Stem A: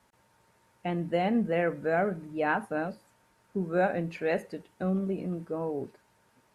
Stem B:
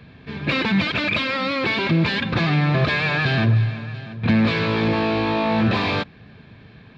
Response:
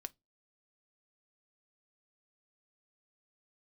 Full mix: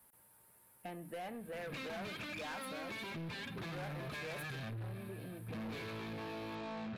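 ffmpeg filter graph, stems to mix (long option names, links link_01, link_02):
-filter_complex "[0:a]acrossover=split=460|3000[link_01][link_02][link_03];[link_01]acompressor=threshold=-39dB:ratio=6[link_04];[link_04][link_02][link_03]amix=inputs=3:normalize=0,aexciter=amount=5.7:drive=9.5:freq=9100,volume=-6dB[link_05];[1:a]flanger=delay=4.1:depth=7.3:regen=-59:speed=0.36:shape=triangular,adelay=1250,volume=-11.5dB[link_06];[link_05][link_06]amix=inputs=2:normalize=0,asoftclip=type=tanh:threshold=-36dB,acompressor=threshold=-45dB:ratio=2"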